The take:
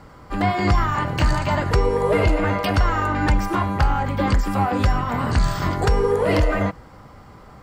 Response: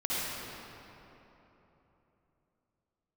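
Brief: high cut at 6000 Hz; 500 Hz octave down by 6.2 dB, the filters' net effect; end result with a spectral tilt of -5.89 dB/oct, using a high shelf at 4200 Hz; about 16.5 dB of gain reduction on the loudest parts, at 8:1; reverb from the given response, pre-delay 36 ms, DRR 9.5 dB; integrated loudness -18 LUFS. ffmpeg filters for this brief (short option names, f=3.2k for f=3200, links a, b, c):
-filter_complex "[0:a]lowpass=6k,equalizer=f=500:t=o:g=-7.5,highshelf=f=4.2k:g=-9,acompressor=threshold=-31dB:ratio=8,asplit=2[a][b];[1:a]atrim=start_sample=2205,adelay=36[c];[b][c]afir=irnorm=-1:irlink=0,volume=-18dB[d];[a][d]amix=inputs=2:normalize=0,volume=17dB"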